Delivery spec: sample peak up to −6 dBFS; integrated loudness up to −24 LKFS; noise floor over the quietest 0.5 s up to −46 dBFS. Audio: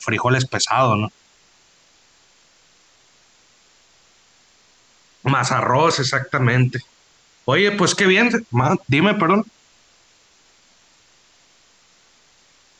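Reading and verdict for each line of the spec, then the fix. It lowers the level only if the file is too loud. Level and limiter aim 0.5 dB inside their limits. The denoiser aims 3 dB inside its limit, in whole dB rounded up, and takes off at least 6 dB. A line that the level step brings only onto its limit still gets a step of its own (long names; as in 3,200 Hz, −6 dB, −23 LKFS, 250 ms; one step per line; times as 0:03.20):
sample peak −5.5 dBFS: out of spec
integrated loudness −18.0 LKFS: out of spec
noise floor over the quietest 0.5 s −56 dBFS: in spec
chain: level −6.5 dB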